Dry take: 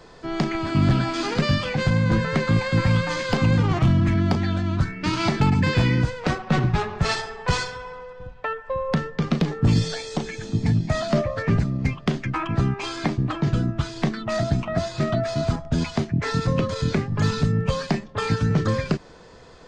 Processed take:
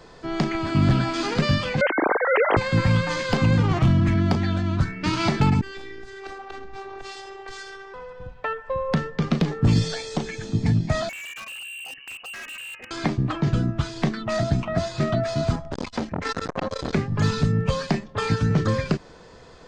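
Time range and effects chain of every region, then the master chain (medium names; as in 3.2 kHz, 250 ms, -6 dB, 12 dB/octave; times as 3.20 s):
1.81–2.57 s: formants replaced by sine waves + high-pass 230 Hz
5.61–7.94 s: bass shelf 70 Hz -12 dB + compression 5:1, threshold -31 dBFS + robot voice 391 Hz
11.09–12.91 s: frequency inversion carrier 2.9 kHz + level held to a coarse grid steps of 15 dB + hard clipper -35 dBFS
15.72–16.93 s: comb 3.8 ms + transformer saturation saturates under 1.1 kHz
whole clip: none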